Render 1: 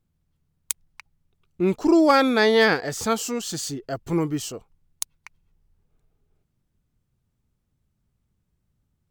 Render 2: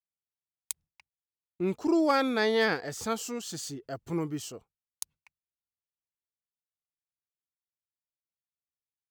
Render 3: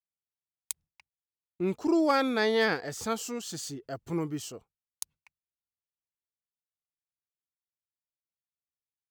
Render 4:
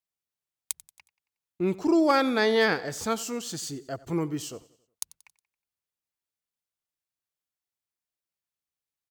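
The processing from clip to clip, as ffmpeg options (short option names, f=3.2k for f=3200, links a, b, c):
-af "highpass=56,agate=range=-33dB:threshold=-40dB:ratio=3:detection=peak,volume=-8dB"
-af anull
-af "aecho=1:1:91|182|273|364:0.1|0.048|0.023|0.0111,volume=3dB"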